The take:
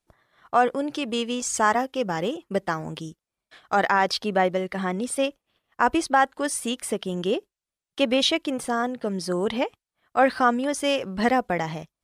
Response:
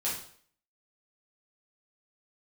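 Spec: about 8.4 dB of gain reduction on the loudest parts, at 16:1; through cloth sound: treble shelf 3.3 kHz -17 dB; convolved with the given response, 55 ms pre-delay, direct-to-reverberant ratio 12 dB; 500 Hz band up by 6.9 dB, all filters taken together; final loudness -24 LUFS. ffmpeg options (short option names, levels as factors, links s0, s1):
-filter_complex "[0:a]equalizer=f=500:t=o:g=8.5,acompressor=threshold=0.158:ratio=16,asplit=2[s0][s1];[1:a]atrim=start_sample=2205,adelay=55[s2];[s1][s2]afir=irnorm=-1:irlink=0,volume=0.133[s3];[s0][s3]amix=inputs=2:normalize=0,highshelf=f=3300:g=-17,volume=1.06"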